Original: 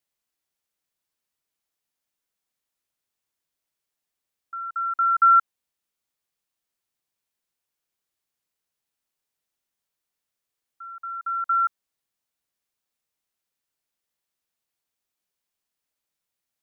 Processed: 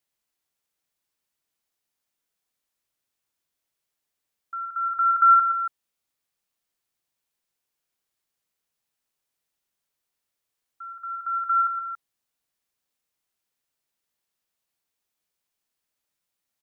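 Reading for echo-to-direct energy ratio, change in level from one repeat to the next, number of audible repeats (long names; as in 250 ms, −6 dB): −8.0 dB, repeats not evenly spaced, 2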